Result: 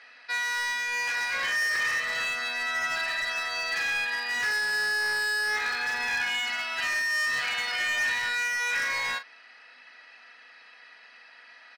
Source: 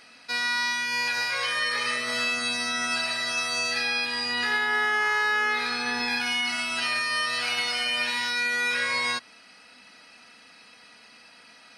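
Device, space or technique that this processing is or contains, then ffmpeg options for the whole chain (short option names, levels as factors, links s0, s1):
megaphone: -filter_complex "[0:a]highpass=540,lowpass=3800,equalizer=f=1800:t=o:w=0.26:g=11,asoftclip=type=hard:threshold=0.0668,asplit=2[s0][s1];[s1]adelay=40,volume=0.282[s2];[s0][s2]amix=inputs=2:normalize=0,volume=0.841"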